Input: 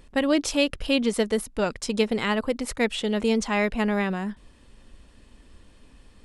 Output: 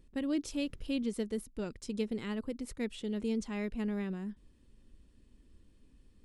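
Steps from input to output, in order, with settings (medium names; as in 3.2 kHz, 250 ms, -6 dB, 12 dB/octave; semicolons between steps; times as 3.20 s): 0.53–1.03 s: added noise brown -49 dBFS; FFT filter 360 Hz 0 dB, 690 Hz -12 dB, 10 kHz -5 dB; trim -9 dB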